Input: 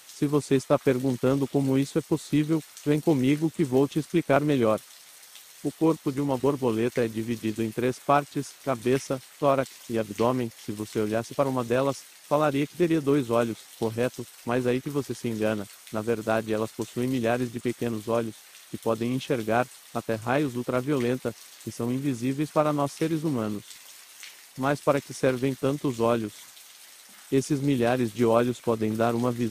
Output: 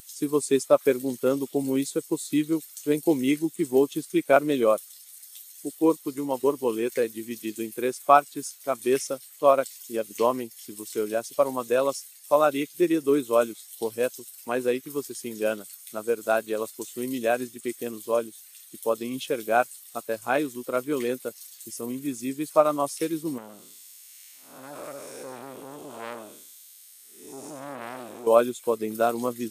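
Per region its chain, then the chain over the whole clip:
23.38–28.27 s: spectral blur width 293 ms + transformer saturation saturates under 1.4 kHz
whole clip: RIAA curve recording; band-stop 5.9 kHz, Q 24; spectral contrast expander 1.5:1; trim +2.5 dB

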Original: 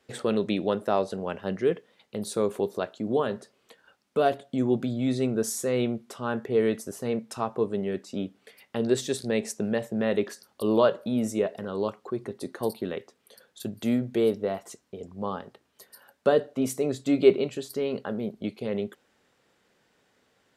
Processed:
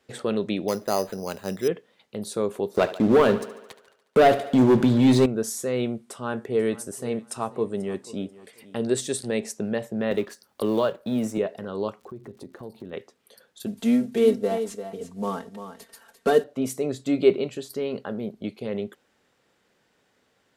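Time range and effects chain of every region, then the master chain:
0.68–1.68 s: low-pass 8.6 kHz + careless resampling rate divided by 8×, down none, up hold
2.75–5.26 s: waveshaping leveller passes 3 + thinning echo 72 ms, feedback 65%, high-pass 180 Hz, level -15 dB
5.83–9.40 s: peaking EQ 8.7 kHz +10 dB 0.38 oct + feedback delay 488 ms, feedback 23%, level -19 dB
10.11–11.38 s: companding laws mixed up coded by A + three bands compressed up and down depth 70%
11.99–12.92 s: tilt EQ -2.5 dB/octave + crackle 160 per s -45 dBFS + compression 2.5:1, threshold -41 dBFS
13.66–16.44 s: CVSD coder 64 kbps + comb 4.4 ms, depth 89% + delay 345 ms -10 dB
whole clip: none

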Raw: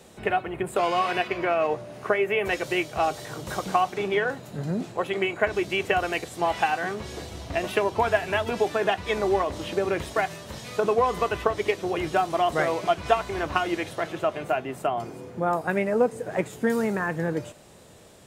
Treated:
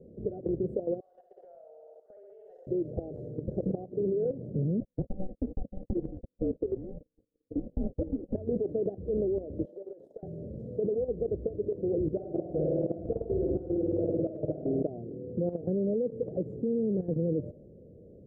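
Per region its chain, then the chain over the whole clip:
1.00–2.67 s: inverse Chebyshev high-pass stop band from 250 Hz, stop band 60 dB + flutter echo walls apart 11.2 m, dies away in 1.1 s + compression 3:1, threshold -31 dBFS
4.80–8.35 s: gate -32 dBFS, range -43 dB + ring modulator 380 Hz
9.65–10.23 s: high-pass 870 Hz + compression 8:1, threshold -36 dBFS
12.10–14.83 s: band-stop 700 Hz, Q 21 + flutter echo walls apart 8.9 m, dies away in 1.4 s
whole clip: compression 8:1, threshold -25 dBFS; elliptic low-pass 520 Hz, stop band 50 dB; level held to a coarse grid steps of 12 dB; trim +8 dB

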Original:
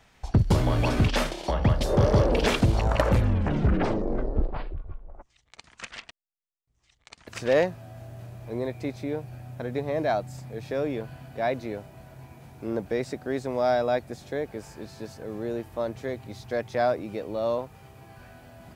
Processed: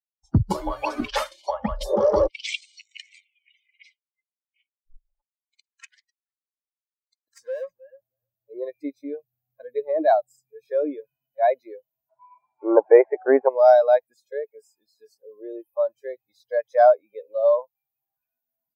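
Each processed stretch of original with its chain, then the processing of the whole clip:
2.27–4.87 s: Chebyshev band-pass 2.1–8.4 kHz, order 4 + transformer saturation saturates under 2.1 kHz
5.94–8.50 s: peaking EQ 2.7 kHz -11.5 dB 0.52 oct + valve stage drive 30 dB, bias 0.45 + tape echo 317 ms, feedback 39%, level -7 dB, low-pass 3 kHz
12.09–13.49 s: elliptic low-pass 2.4 kHz, stop band 50 dB + peaking EQ 920 Hz +14 dB 2.3 oct
whole clip: expander on every frequency bin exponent 2; spectral noise reduction 25 dB; peaking EQ 600 Hz +10 dB 1.9 oct; trim +2.5 dB

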